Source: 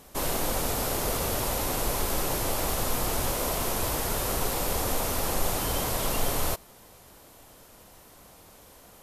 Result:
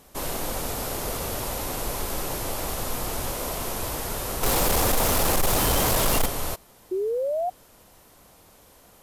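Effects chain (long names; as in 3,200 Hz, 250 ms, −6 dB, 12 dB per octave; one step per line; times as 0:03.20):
0:04.43–0:06.26: leveller curve on the samples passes 3
0:06.91–0:07.50: sound drawn into the spectrogram rise 360–740 Hz −24 dBFS
level −1.5 dB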